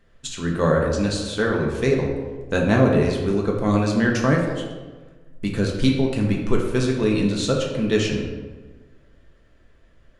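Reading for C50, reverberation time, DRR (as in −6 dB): 3.5 dB, 1.3 s, −1.5 dB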